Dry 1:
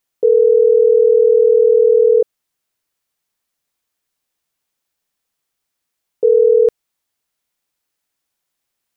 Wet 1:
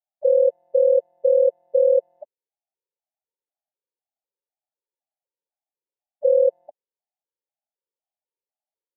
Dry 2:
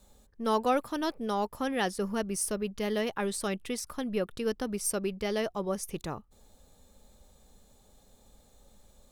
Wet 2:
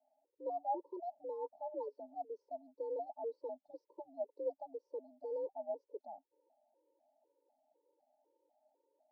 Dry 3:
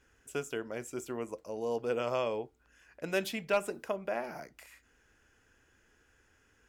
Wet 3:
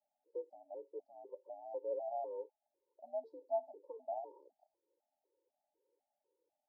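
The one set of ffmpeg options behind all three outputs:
-af "highpass=f=330:t=q:w=0.5412,highpass=f=330:t=q:w=1.307,lowpass=f=2.6k:t=q:w=0.5176,lowpass=f=2.6k:t=q:w=0.7071,lowpass=f=2.6k:t=q:w=1.932,afreqshift=64,asuperstop=centerf=2000:order=20:qfactor=0.58,afftfilt=real='re*gt(sin(2*PI*2*pts/sr)*(1-2*mod(floor(b*sr/1024/290),2)),0)':imag='im*gt(sin(2*PI*2*pts/sr)*(1-2*mod(floor(b*sr/1024/290),2)),0)':win_size=1024:overlap=0.75,volume=-5dB"

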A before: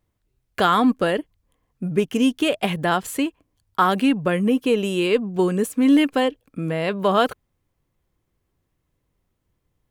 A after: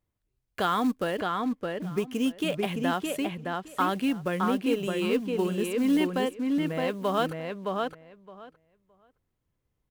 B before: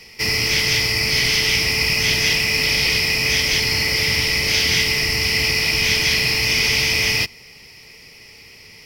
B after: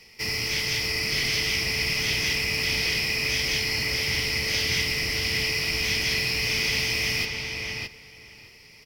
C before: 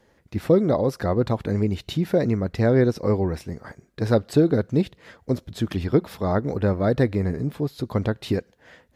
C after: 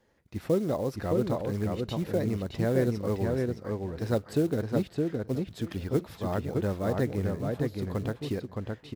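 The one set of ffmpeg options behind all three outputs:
-filter_complex "[0:a]acrusher=bits=6:mode=log:mix=0:aa=0.000001,asplit=2[a][b];[b]adelay=616,lowpass=f=3.6k:p=1,volume=-3dB,asplit=2[c][d];[d]adelay=616,lowpass=f=3.6k:p=1,volume=0.15,asplit=2[e][f];[f]adelay=616,lowpass=f=3.6k:p=1,volume=0.15[g];[a][c][e][g]amix=inputs=4:normalize=0,volume=-8.5dB"

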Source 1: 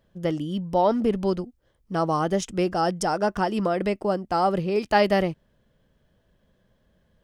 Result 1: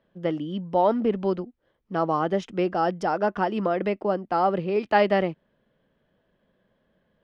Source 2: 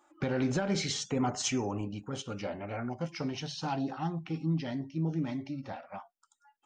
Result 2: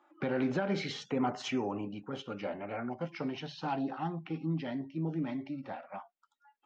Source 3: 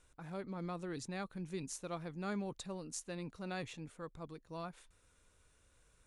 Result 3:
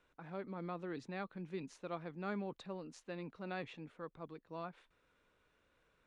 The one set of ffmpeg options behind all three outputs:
-filter_complex "[0:a]acrossover=split=160 3900:gain=0.224 1 0.0631[a][b][c];[a][b][c]amix=inputs=3:normalize=0"

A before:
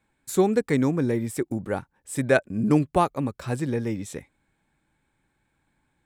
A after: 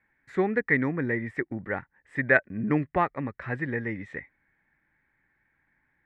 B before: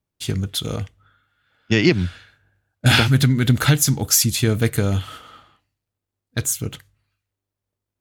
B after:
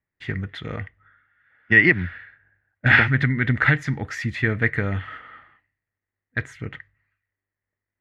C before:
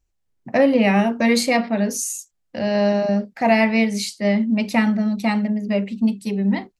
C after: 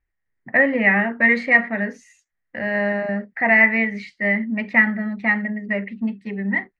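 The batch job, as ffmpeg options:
-af "lowpass=f=1.9k:t=q:w=9.6,volume=-5.5dB"

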